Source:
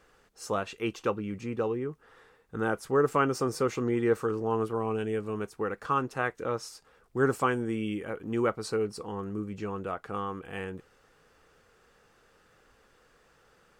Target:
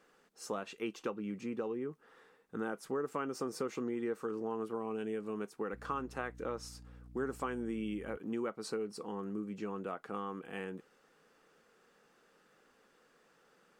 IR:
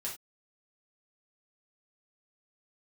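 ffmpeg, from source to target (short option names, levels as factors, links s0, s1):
-filter_complex "[0:a]lowshelf=f=130:t=q:w=1.5:g=-14,acompressor=threshold=0.0355:ratio=4,asettb=1/sr,asplit=3[s0][s1][s2];[s0]atrim=end=5.734[s3];[s1]atrim=start=5.73:end=8.17,asetpts=PTS-STARTPTS,afade=t=in:d=0.004:c=qsin,afade=t=out:st=2.436:d=0.004:c=qsin,aeval=exprs='val(0)+0.00447*(sin(2*PI*60*n/s)+sin(2*PI*2*60*n/s)/2+sin(2*PI*3*60*n/s)/3+sin(2*PI*4*60*n/s)/4+sin(2*PI*5*60*n/s)/5)':c=same[s4];[s2]atrim=start=8.166[s5];[s3][s4]acrossfade=d=0.004:c1=hsin:c2=qsin[s6];[s6][s5]acrossfade=d=0.004:c1=qsin:c2=hsin,volume=0.562"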